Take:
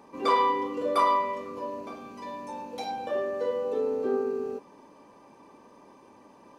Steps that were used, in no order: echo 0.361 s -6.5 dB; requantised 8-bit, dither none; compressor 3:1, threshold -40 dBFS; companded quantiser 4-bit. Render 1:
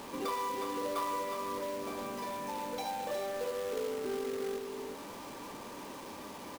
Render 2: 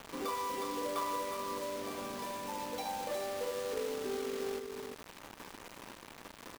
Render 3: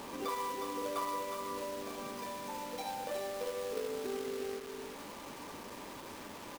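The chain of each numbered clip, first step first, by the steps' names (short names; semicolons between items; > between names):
compressor > echo > companded quantiser > requantised; compressor > requantised > echo > companded quantiser; companded quantiser > compressor > echo > requantised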